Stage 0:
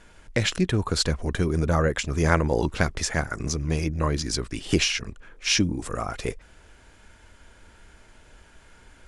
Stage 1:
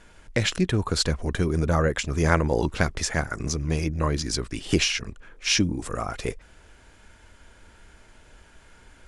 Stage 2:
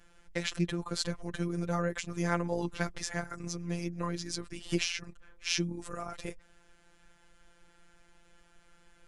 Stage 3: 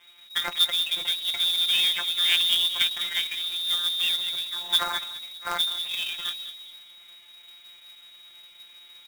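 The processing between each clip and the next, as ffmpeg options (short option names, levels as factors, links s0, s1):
-af anull
-af "afftfilt=real='hypot(re,im)*cos(PI*b)':imag='0':win_size=1024:overlap=0.75,volume=0.501"
-filter_complex "[0:a]asplit=2[s0][s1];[s1]adelay=203,lowpass=f=1100:p=1,volume=0.316,asplit=2[s2][s3];[s3]adelay=203,lowpass=f=1100:p=1,volume=0.37,asplit=2[s4][s5];[s5]adelay=203,lowpass=f=1100:p=1,volume=0.37,asplit=2[s6][s7];[s7]adelay=203,lowpass=f=1100:p=1,volume=0.37[s8];[s0][s2][s4][s6][s8]amix=inputs=5:normalize=0,lowpass=f=3200:t=q:w=0.5098,lowpass=f=3200:t=q:w=0.6013,lowpass=f=3200:t=q:w=0.9,lowpass=f=3200:t=q:w=2.563,afreqshift=-3800,acrusher=bits=2:mode=log:mix=0:aa=0.000001,volume=2.11"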